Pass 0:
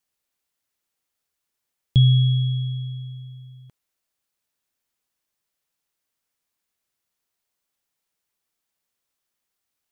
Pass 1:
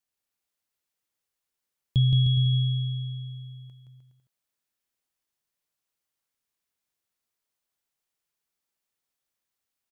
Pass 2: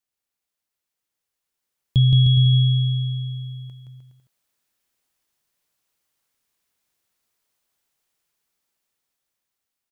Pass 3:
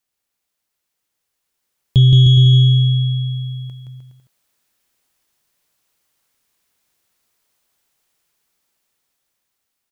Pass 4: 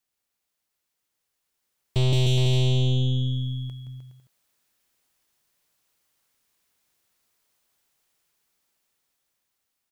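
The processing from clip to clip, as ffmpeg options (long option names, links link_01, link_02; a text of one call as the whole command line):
ffmpeg -i in.wav -af "aecho=1:1:170|306|414.8|501.8|571.5:0.631|0.398|0.251|0.158|0.1,volume=-6.5dB" out.wav
ffmpeg -i in.wav -af "dynaudnorm=framelen=580:gausssize=7:maxgain=9dB" out.wav
ffmpeg -i in.wav -af "acontrast=78" out.wav
ffmpeg -i in.wav -af "aeval=exprs='(tanh(10*val(0)+0.65)-tanh(0.65))/10':channel_layout=same" out.wav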